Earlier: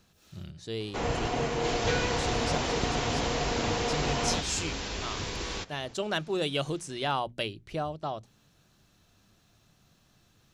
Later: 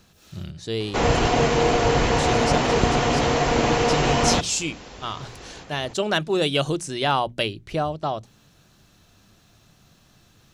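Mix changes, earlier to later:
speech +8.0 dB
first sound +10.5 dB
second sound −10.0 dB

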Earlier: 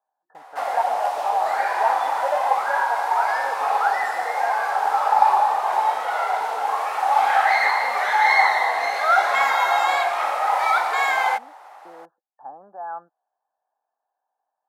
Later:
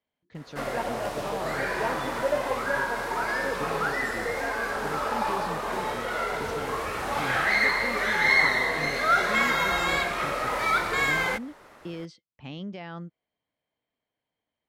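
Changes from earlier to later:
speech: remove linear-phase brick-wall low-pass 1,800 Hz
master: remove high-pass with resonance 790 Hz, resonance Q 7.9

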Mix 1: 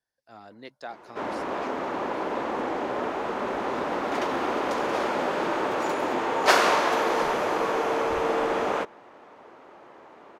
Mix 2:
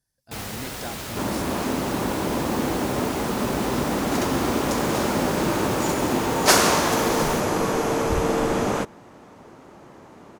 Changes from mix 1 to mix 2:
first sound: unmuted
master: remove three-way crossover with the lows and the highs turned down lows −18 dB, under 350 Hz, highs −16 dB, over 3,900 Hz

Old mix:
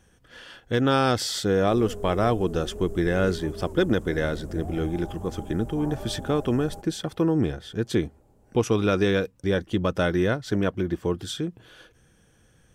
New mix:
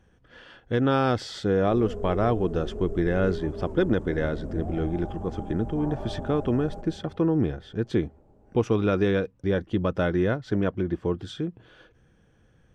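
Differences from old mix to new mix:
background: send +11.5 dB
master: add head-to-tape spacing loss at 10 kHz 20 dB

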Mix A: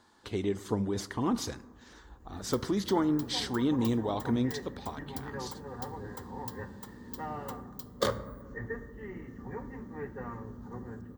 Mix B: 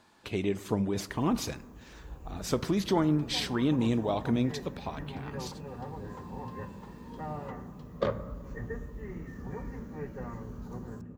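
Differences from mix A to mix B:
first sound +8.5 dB
second sound: add head-to-tape spacing loss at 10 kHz 34 dB
master: add thirty-one-band graphic EQ 160 Hz +10 dB, 630 Hz +6 dB, 2,500 Hz +11 dB, 12,500 Hz +7 dB

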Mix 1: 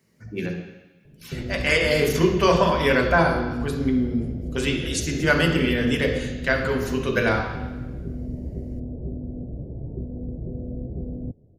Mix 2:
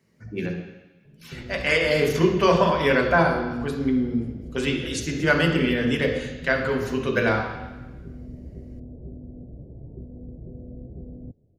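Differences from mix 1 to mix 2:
background −7.5 dB
master: add high-shelf EQ 6,000 Hz −8 dB

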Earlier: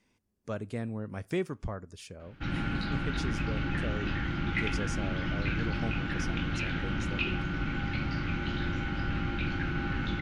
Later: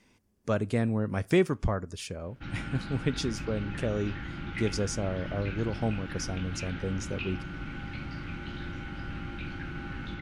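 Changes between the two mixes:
speech +8.0 dB
background −6.0 dB

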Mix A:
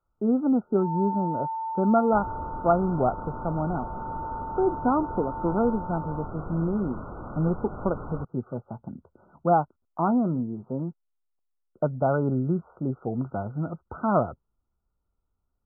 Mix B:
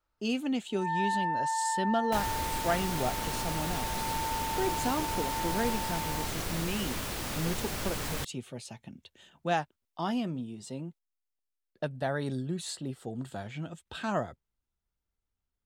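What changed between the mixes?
speech −8.5 dB
master: remove linear-phase brick-wall low-pass 1,500 Hz

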